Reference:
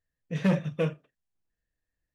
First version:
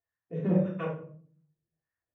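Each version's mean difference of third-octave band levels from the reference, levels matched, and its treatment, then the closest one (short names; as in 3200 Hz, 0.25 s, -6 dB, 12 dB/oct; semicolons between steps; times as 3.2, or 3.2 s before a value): 8.0 dB: bell 96 Hz +12.5 dB 1.2 oct; notch 4700 Hz, Q 6.9; wah 1.7 Hz 320–1400 Hz, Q 2.1; shoebox room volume 510 m³, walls furnished, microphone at 3.3 m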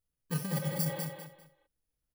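13.0 dB: FFT order left unsorted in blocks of 32 samples; spectral repair 0.65–1.04, 290–4300 Hz before; negative-ratio compressor -28 dBFS, ratio -1; feedback echo 0.199 s, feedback 26%, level -6 dB; gain -3.5 dB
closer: first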